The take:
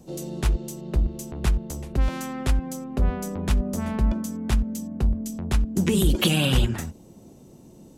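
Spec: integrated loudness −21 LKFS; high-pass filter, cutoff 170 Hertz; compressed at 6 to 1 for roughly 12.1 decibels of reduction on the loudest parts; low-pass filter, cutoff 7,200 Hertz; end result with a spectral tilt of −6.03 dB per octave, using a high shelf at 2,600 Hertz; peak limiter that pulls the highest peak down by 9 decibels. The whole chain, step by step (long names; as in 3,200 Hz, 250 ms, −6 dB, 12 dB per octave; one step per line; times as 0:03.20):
high-pass filter 170 Hz
low-pass filter 7,200 Hz
high-shelf EQ 2,600 Hz −7.5 dB
downward compressor 6 to 1, threshold −33 dBFS
level +18 dB
brickwall limiter −12.5 dBFS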